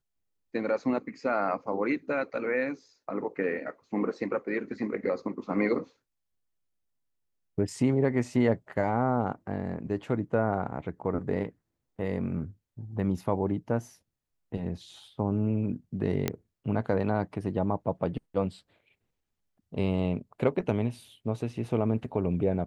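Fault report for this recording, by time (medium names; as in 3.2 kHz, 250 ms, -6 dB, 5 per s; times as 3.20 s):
16.28 s: pop -12 dBFS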